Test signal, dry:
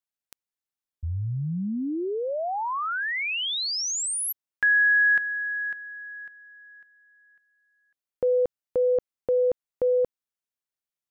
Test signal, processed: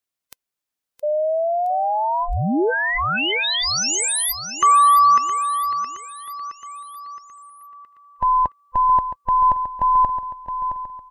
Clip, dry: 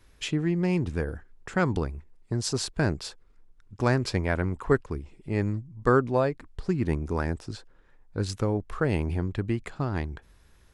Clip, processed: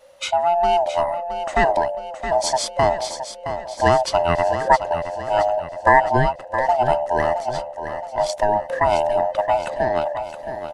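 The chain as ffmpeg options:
-filter_complex "[0:a]afftfilt=real='real(if(lt(b,1008),b+24*(1-2*mod(floor(b/24),2)),b),0)':imag='imag(if(lt(b,1008),b+24*(1-2*mod(floor(b/24),2)),b),0)':win_size=2048:overlap=0.75,adynamicequalizer=threshold=0.00891:dfrequency=380:dqfactor=1.2:tfrequency=380:tqfactor=1.2:attack=5:release=100:ratio=0.4:range=2:mode=boostabove:tftype=bell,asplit=2[s0][s1];[s1]aecho=0:1:668|1336|2004|2672|3340:0.335|0.164|0.0804|0.0394|0.0193[s2];[s0][s2]amix=inputs=2:normalize=0,volume=2.11"

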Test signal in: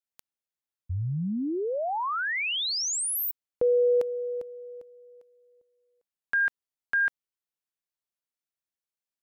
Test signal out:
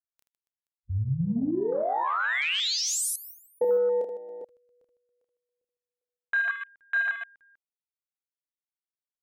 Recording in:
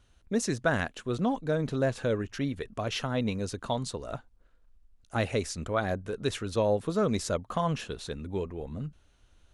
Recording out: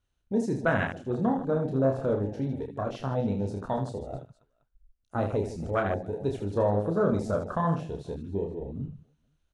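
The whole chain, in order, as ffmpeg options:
-af "aecho=1:1:30|78|154.8|277.7|474.3:0.631|0.398|0.251|0.158|0.1,afwtdn=0.0316"

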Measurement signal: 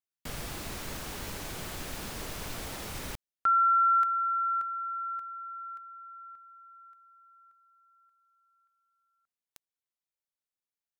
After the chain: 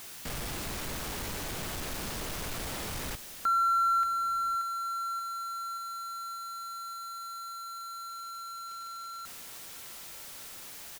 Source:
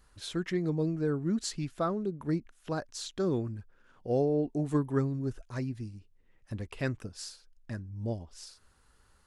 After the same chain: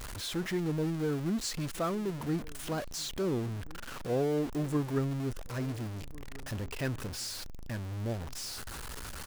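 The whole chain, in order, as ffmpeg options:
-filter_complex "[0:a]aeval=exprs='val(0)+0.5*0.0266*sgn(val(0))':c=same,asplit=2[s0][s1];[s1]adelay=1399,volume=0.0891,highshelf=f=4000:g=-31.5[s2];[s0][s2]amix=inputs=2:normalize=0,volume=0.631"

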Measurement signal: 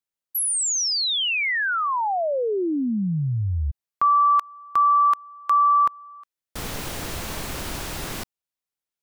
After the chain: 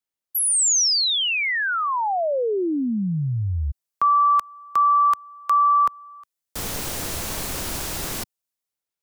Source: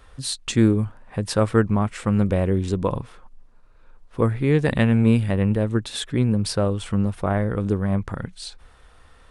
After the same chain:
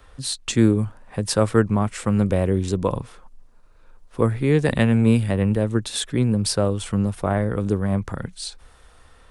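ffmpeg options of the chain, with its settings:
-filter_complex "[0:a]acrossover=split=150|690|4900[s0][s1][s2][s3];[s1]crystalizer=i=9.5:c=0[s4];[s3]dynaudnorm=f=210:g=5:m=2.11[s5];[s0][s4][s2][s5]amix=inputs=4:normalize=0"

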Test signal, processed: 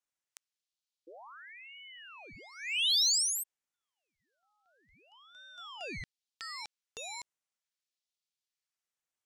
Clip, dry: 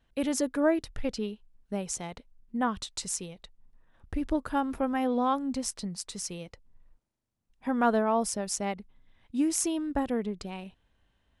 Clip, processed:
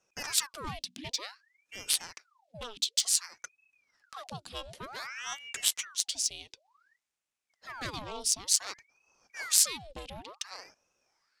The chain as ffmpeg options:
-af "adynamicsmooth=sensitivity=3:basefreq=4500,aexciter=amount=11.1:drive=9.4:freq=2600,aeval=exprs='val(0)*sin(2*PI*1400*n/s+1400*0.85/0.55*sin(2*PI*0.55*n/s))':c=same,volume=0.251"

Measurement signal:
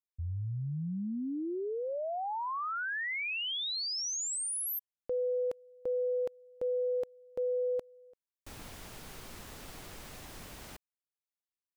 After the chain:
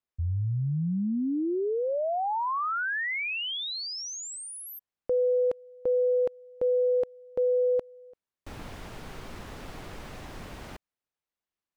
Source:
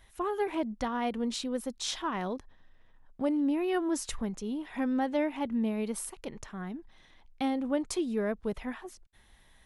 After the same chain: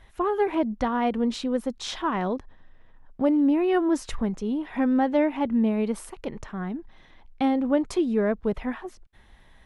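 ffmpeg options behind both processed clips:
-af "lowpass=f=2100:p=1,volume=2.37"

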